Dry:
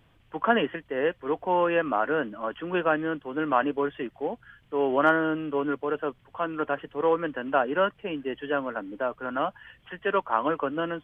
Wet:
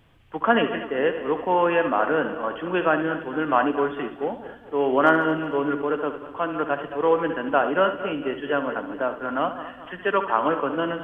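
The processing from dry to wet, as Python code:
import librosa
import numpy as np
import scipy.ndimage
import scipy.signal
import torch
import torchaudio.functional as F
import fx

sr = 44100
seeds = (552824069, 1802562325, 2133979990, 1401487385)

y = fx.reverse_delay_fb(x, sr, ms=112, feedback_pct=67, wet_db=-12)
y = fx.room_flutter(y, sr, wall_m=11.9, rt60_s=0.37)
y = F.gain(torch.from_numpy(y), 3.0).numpy()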